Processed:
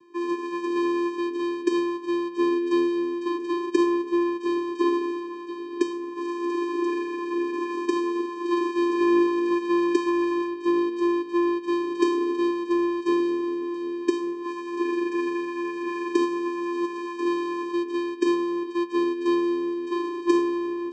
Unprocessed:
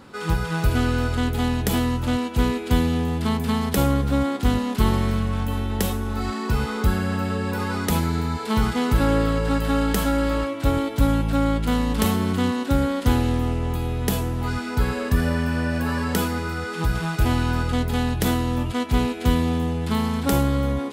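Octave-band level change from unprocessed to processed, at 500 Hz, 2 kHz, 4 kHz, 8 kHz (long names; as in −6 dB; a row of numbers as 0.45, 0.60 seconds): +2.5 dB, −5.5 dB, −8.5 dB, below −10 dB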